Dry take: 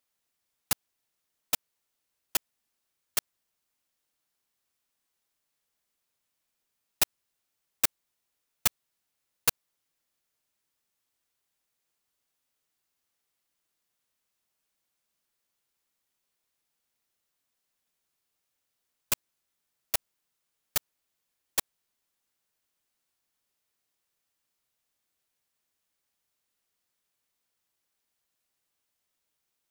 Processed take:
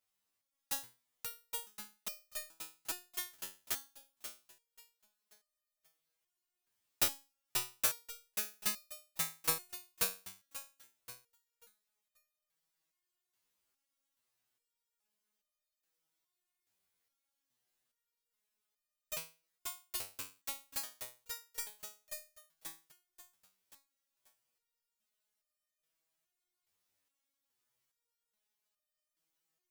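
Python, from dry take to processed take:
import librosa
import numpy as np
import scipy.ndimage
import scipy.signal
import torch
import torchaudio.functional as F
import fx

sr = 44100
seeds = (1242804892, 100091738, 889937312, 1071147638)

y = fx.echo_feedback(x, sr, ms=535, feedback_pct=39, wet_db=-3.0)
y = fx.resonator_held(y, sr, hz=2.4, low_hz=95.0, high_hz=610.0)
y = F.gain(torch.from_numpy(y), 5.5).numpy()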